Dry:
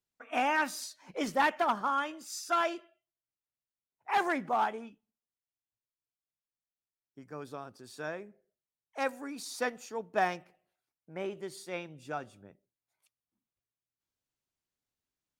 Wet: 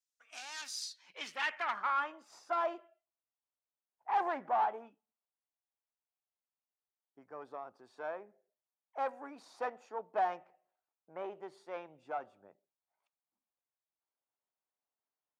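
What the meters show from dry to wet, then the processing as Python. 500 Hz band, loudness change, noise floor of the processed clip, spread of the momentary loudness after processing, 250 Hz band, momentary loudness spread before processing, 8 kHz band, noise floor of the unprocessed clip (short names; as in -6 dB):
-5.0 dB, -4.5 dB, under -85 dBFS, 17 LU, -13.0 dB, 17 LU, n/a, under -85 dBFS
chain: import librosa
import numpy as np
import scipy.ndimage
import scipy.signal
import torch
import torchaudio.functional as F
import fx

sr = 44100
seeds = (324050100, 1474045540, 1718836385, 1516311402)

y = fx.tube_stage(x, sr, drive_db=29.0, bias=0.45)
y = fx.filter_sweep_bandpass(y, sr, from_hz=6500.0, to_hz=810.0, start_s=0.52, end_s=2.33, q=1.6)
y = y * 10.0 ** (4.5 / 20.0)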